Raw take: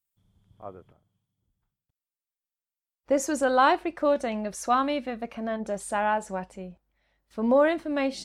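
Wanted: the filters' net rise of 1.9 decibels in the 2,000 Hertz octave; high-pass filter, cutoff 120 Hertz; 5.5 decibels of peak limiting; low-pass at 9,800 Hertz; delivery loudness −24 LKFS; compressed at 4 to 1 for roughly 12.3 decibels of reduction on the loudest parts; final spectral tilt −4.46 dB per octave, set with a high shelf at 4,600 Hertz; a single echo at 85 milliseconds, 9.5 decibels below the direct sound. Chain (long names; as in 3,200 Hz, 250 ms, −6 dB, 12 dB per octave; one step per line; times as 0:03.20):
high-pass filter 120 Hz
low-pass filter 9,800 Hz
parametric band 2,000 Hz +3.5 dB
high-shelf EQ 4,600 Hz −5 dB
downward compressor 4 to 1, threshold −31 dBFS
brickwall limiter −26 dBFS
single-tap delay 85 ms −9.5 dB
level +12 dB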